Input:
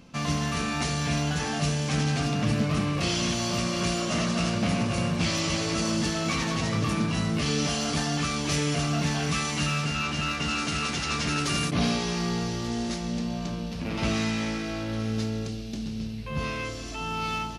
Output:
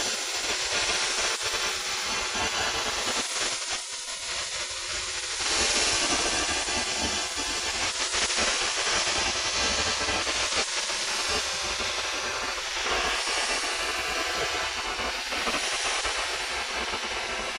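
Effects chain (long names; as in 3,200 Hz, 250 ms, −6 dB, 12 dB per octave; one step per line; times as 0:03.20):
extreme stretch with random phases 9×, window 0.10 s, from 0:01.01
slap from a distant wall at 45 metres, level −24 dB
gate on every frequency bin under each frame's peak −20 dB weak
level +9 dB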